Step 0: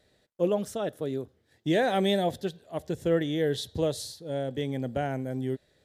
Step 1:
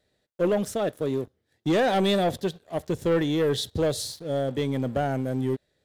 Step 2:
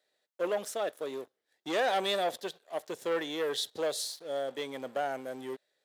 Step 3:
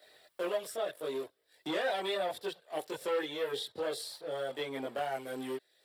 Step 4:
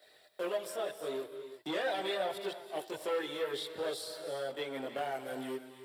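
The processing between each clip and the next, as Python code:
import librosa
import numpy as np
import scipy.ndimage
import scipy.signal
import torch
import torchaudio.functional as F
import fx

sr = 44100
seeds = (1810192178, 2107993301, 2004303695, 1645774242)

y1 = fx.leveller(x, sr, passes=2)
y1 = y1 * 10.0 ** (-2.0 / 20.0)
y2 = scipy.signal.sosfilt(scipy.signal.butter(2, 560.0, 'highpass', fs=sr, output='sos'), y1)
y2 = y2 * 10.0 ** (-3.0 / 20.0)
y3 = fx.chorus_voices(y2, sr, voices=6, hz=0.65, base_ms=21, depth_ms=1.7, mix_pct=60)
y3 = fx.peak_eq(y3, sr, hz=6400.0, db=-13.0, octaves=0.22)
y3 = fx.band_squash(y3, sr, depth_pct=70)
y4 = fx.rev_gated(y3, sr, seeds[0], gate_ms=370, shape='rising', drr_db=8.5)
y4 = y4 * 10.0 ** (-1.5 / 20.0)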